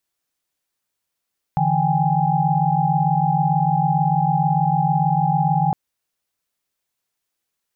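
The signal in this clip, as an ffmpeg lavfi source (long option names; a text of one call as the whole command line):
ffmpeg -f lavfi -i "aevalsrc='0.0891*(sin(2*PI*146.83*t)+sin(2*PI*164.81*t)+sin(2*PI*783.99*t)+sin(2*PI*830.61*t))':duration=4.16:sample_rate=44100" out.wav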